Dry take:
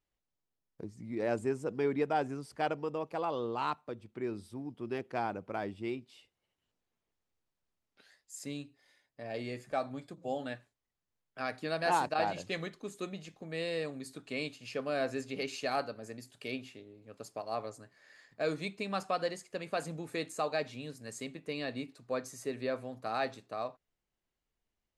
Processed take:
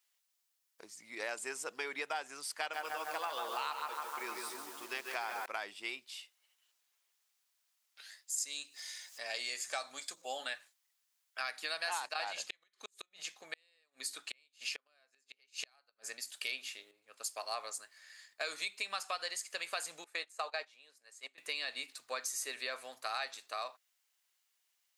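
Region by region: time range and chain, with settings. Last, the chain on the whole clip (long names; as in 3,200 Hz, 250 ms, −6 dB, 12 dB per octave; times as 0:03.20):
0:02.59–0:05.46: mains-hum notches 60/120/180 Hz + bucket-brigade delay 153 ms, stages 2,048, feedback 66%, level −6.5 dB + feedback echo at a low word length 140 ms, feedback 35%, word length 9 bits, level −8 dB
0:08.38–0:10.22: parametric band 6,500 Hz +10.5 dB 1.1 octaves + upward compression, threshold −48 dBFS
0:12.33–0:16.29: high-shelf EQ 9,700 Hz −5.5 dB + gate with flip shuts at −29 dBFS, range −39 dB
0:16.91–0:18.41: parametric band 9,100 Hz +2.5 dB 0.35 octaves + multiband upward and downward expander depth 40%
0:20.04–0:21.38: noise gate −39 dBFS, range −16 dB + high-pass filter 480 Hz + spectral tilt −3 dB per octave
whole clip: high-pass filter 1,100 Hz 12 dB per octave; high-shelf EQ 3,100 Hz +10 dB; downward compressor 5 to 1, threshold −41 dBFS; level +6 dB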